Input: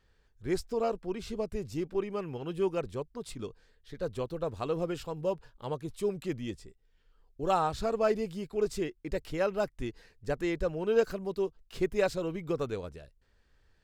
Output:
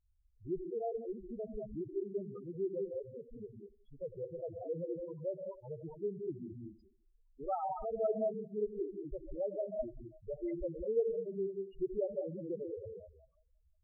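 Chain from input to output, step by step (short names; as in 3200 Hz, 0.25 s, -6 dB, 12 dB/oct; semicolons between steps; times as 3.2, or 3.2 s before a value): split-band echo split 690 Hz, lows 84 ms, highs 0.18 s, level -16 dB; non-linear reverb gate 0.23 s rising, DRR 2.5 dB; loudest bins only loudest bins 4; gain -6.5 dB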